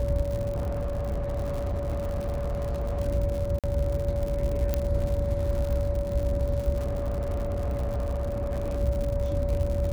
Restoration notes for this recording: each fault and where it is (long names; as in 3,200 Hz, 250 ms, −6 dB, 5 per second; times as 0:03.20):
surface crackle 130 per second −31 dBFS
whistle 570 Hz −30 dBFS
0:00.53–0:03.01: clipping −25.5 dBFS
0:03.59–0:03.64: drop-out 47 ms
0:04.74: click −12 dBFS
0:06.77–0:08.79: clipping −25 dBFS